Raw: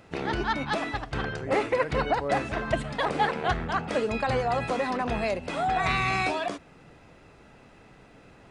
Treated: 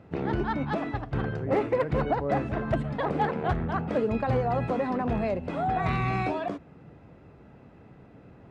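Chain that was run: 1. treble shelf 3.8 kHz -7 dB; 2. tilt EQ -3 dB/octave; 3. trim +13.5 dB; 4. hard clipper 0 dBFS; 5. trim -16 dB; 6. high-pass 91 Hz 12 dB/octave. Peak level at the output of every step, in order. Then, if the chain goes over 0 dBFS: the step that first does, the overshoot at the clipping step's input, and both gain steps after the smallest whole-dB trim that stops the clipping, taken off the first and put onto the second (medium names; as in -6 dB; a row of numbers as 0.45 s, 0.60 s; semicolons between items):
-12.0 dBFS, -8.0 dBFS, +5.5 dBFS, 0.0 dBFS, -16.0 dBFS, -13.5 dBFS; step 3, 5.5 dB; step 3 +7.5 dB, step 5 -10 dB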